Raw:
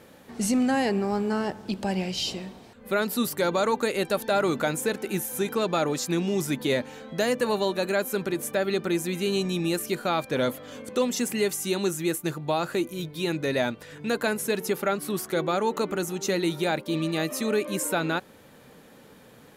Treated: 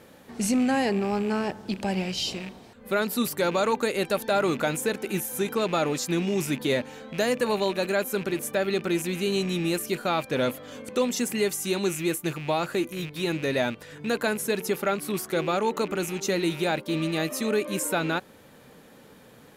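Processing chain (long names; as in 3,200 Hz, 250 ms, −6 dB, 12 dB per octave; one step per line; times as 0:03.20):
loose part that buzzes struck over −39 dBFS, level −30 dBFS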